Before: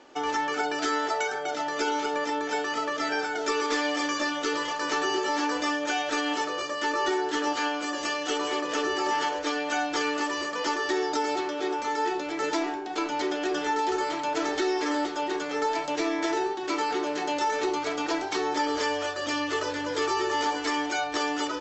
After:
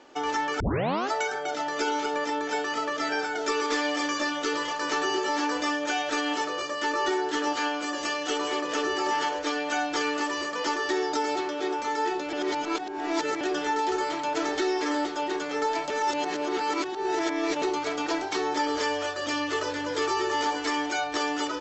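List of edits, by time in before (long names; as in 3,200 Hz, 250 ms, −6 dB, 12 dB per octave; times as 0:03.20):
0:00.60: tape start 0.51 s
0:12.33–0:13.41: reverse
0:15.90–0:17.62: reverse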